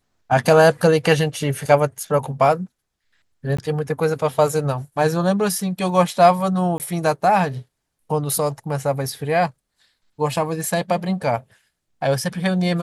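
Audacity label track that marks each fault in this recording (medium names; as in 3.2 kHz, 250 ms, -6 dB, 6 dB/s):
3.570000	3.580000	dropout 15 ms
6.780000	6.800000	dropout 19 ms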